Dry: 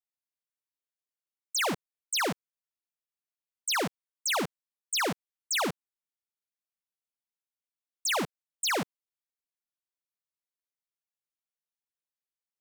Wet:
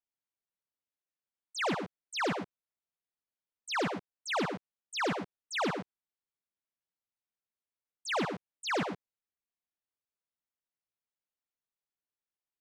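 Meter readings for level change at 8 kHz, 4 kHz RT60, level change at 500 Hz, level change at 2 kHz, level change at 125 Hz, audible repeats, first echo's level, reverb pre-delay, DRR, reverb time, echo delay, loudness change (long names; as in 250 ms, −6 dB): −13.5 dB, no reverb audible, 0.0 dB, −3.0 dB, +0.5 dB, 1, −9.5 dB, no reverb audible, no reverb audible, no reverb audible, 108 ms, −4.0 dB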